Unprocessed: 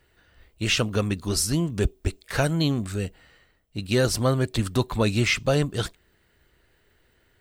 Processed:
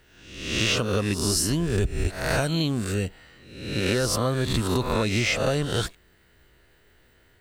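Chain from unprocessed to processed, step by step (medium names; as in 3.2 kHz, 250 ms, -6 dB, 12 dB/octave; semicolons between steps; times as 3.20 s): reverse spectral sustain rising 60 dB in 0.79 s; compression, threshold -22 dBFS, peak gain reduction 7.5 dB; trim +2 dB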